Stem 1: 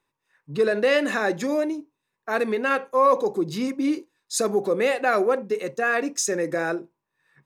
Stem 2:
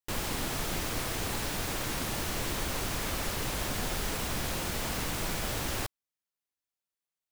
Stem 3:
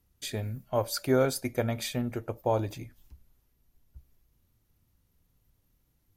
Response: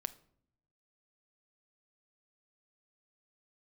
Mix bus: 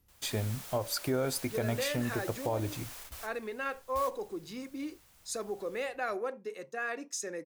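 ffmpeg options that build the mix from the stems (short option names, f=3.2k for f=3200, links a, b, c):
-filter_complex "[0:a]lowshelf=f=380:g=-6,bandreject=f=50.28:t=h:w=4,bandreject=f=100.56:t=h:w=4,bandreject=f=150.84:t=h:w=4,adelay=950,volume=-12dB[a];[1:a]highpass=580,highshelf=f=6.1k:g=8.5,volume=-14.5dB[b];[2:a]volume=1dB,asplit=2[c][d];[d]apad=whole_len=322494[e];[b][e]sidechaingate=range=-17dB:threshold=-55dB:ratio=16:detection=peak[f];[a][f][c]amix=inputs=3:normalize=0,alimiter=limit=-21.5dB:level=0:latency=1:release=164"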